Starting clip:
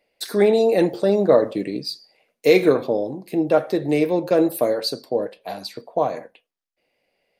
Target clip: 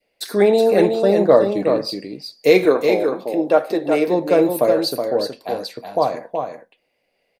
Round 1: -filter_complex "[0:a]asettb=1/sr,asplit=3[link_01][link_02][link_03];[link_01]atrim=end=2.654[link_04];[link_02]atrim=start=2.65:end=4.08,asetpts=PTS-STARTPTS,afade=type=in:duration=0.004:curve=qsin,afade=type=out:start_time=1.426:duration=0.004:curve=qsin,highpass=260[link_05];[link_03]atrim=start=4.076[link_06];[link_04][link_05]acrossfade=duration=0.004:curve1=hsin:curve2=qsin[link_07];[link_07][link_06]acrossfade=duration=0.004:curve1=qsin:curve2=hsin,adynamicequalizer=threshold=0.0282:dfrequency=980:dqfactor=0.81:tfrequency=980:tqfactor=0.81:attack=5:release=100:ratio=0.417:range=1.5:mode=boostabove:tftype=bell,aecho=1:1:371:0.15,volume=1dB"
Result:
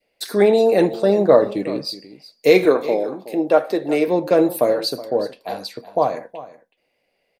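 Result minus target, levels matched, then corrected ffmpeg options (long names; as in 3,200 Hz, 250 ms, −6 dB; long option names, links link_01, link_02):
echo-to-direct −10.5 dB
-filter_complex "[0:a]asettb=1/sr,asplit=3[link_01][link_02][link_03];[link_01]atrim=end=2.654[link_04];[link_02]atrim=start=2.65:end=4.08,asetpts=PTS-STARTPTS,afade=type=in:duration=0.004:curve=qsin,afade=type=out:start_time=1.426:duration=0.004:curve=qsin,highpass=260[link_05];[link_03]atrim=start=4.076[link_06];[link_04][link_05]acrossfade=duration=0.004:curve1=hsin:curve2=qsin[link_07];[link_07][link_06]acrossfade=duration=0.004:curve1=qsin:curve2=hsin,adynamicequalizer=threshold=0.0282:dfrequency=980:dqfactor=0.81:tfrequency=980:tqfactor=0.81:attack=5:release=100:ratio=0.417:range=1.5:mode=boostabove:tftype=bell,aecho=1:1:371:0.501,volume=1dB"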